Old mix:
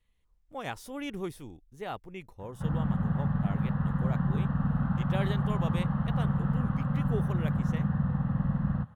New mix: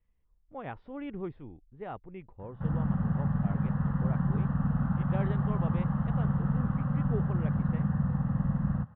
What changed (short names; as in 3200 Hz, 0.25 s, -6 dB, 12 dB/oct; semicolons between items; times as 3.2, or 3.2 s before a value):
speech: add air absorption 440 m; master: add air absorption 300 m